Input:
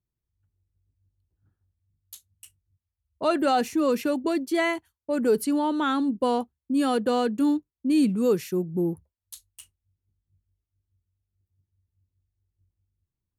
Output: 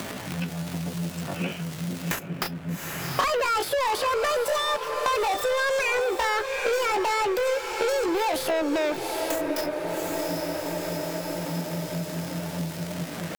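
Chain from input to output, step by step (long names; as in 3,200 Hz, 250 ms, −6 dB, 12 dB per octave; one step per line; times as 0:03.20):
dynamic equaliser 6,800 Hz, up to +4 dB, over −51 dBFS, Q 1.1
in parallel at +2.5 dB: brickwall limiter −22.5 dBFS, peak gain reduction 11 dB
on the sum: downward compressor 12 to 1, threshold −31 dBFS, peak gain reduction 17.5 dB
mid-hump overdrive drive 35 dB, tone 2,700 Hz, clips at −17.5 dBFS
pitch shifter +10 semitones
surface crackle 140 per second −47 dBFS
on a send: feedback delay with all-pass diffusion 780 ms, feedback 41%, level −10 dB
on the sum: multiband upward and downward compressor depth 100%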